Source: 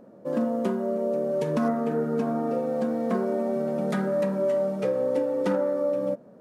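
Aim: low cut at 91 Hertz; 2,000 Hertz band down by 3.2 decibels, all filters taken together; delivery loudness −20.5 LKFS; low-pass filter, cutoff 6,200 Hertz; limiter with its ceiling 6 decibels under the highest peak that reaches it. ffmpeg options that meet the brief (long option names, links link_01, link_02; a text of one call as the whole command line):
ffmpeg -i in.wav -af "highpass=91,lowpass=6200,equalizer=frequency=2000:width_type=o:gain=-4.5,volume=8dB,alimiter=limit=-12.5dB:level=0:latency=1" out.wav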